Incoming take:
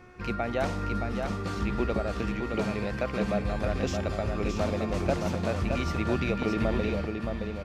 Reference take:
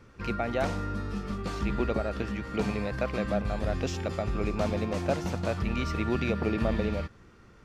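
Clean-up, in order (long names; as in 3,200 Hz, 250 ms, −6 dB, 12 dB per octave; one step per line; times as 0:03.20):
hum removal 362.6 Hz, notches 7
echo removal 620 ms −5 dB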